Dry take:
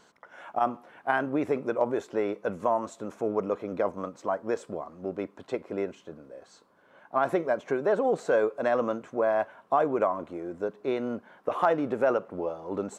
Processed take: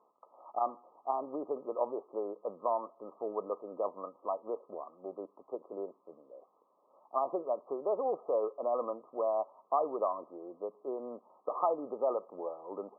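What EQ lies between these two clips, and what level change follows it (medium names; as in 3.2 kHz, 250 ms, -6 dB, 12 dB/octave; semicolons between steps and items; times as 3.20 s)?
high-pass 440 Hz 12 dB/octave; brick-wall FIR low-pass 1.3 kHz; -5.0 dB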